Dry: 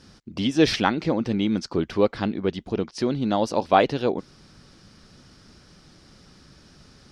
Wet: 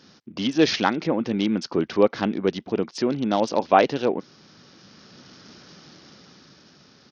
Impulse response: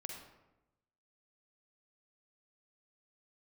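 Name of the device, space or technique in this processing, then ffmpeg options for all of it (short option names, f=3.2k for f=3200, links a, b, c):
Bluetooth headset: -af "highpass=170,dynaudnorm=f=210:g=11:m=7dB,aresample=16000,aresample=44100" -ar 48000 -c:a sbc -b:a 64k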